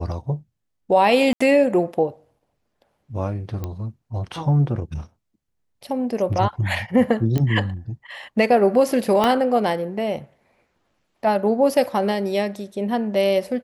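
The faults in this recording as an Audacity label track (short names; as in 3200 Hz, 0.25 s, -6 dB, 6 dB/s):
1.330000	1.410000	gap 75 ms
3.640000	3.640000	pop -16 dBFS
7.380000	7.380000	pop -12 dBFS
9.240000	9.240000	pop -6 dBFS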